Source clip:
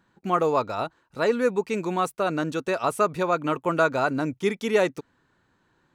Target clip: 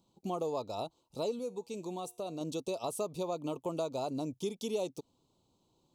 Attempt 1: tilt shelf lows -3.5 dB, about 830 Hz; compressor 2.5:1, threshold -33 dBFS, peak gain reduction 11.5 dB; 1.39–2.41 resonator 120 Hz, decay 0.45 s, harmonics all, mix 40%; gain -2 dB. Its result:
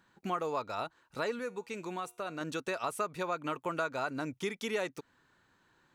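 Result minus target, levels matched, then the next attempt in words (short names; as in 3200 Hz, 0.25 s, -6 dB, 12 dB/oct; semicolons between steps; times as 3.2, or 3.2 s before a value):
2000 Hz band +16.0 dB
Butterworth band-stop 1700 Hz, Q 0.61; tilt shelf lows -3.5 dB, about 830 Hz; compressor 2.5:1, threshold -33 dBFS, peak gain reduction 10 dB; 1.39–2.41 resonator 120 Hz, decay 0.45 s, harmonics all, mix 40%; gain -2 dB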